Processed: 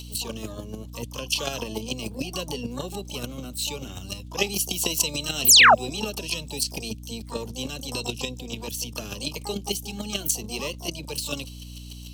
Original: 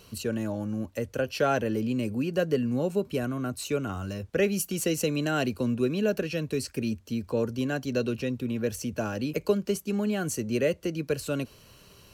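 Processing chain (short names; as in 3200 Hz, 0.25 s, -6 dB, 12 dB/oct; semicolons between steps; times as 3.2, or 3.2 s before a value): resonant high shelf 2300 Hz +13 dB, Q 3; chopper 6.8 Hz, depth 65%, duty 10%; painted sound fall, 5.48–5.75, 560–8900 Hz -13 dBFS; harmoniser +12 st -6 dB; hum 60 Hz, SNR 13 dB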